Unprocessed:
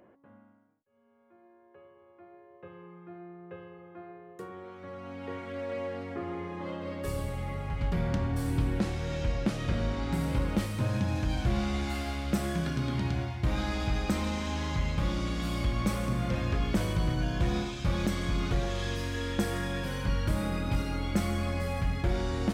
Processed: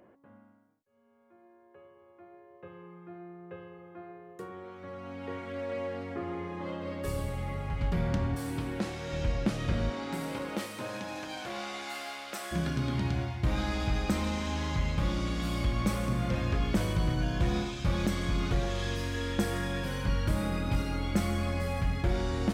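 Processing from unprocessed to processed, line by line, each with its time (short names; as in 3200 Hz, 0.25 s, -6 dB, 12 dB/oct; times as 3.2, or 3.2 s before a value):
8.35–9.13 HPF 250 Hz 6 dB/oct
9.89–12.51 HPF 230 Hz -> 760 Hz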